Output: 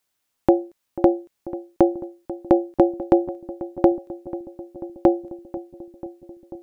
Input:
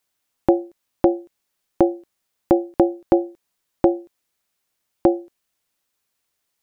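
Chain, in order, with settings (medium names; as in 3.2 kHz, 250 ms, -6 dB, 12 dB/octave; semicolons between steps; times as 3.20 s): filtered feedback delay 490 ms, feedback 77%, low-pass 1 kHz, level -15 dB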